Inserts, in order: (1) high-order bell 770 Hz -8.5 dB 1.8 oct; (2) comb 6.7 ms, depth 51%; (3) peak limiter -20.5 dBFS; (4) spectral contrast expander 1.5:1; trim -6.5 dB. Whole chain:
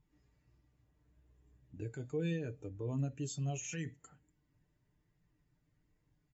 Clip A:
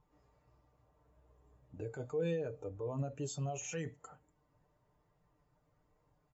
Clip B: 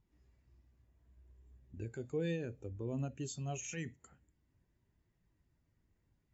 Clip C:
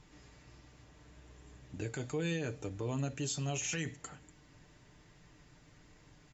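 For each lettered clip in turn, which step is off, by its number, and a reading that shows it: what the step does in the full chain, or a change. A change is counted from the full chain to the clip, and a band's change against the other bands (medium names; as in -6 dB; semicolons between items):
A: 1, 1 kHz band +6.5 dB; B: 2, 125 Hz band -3.5 dB; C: 4, 4 kHz band +7.0 dB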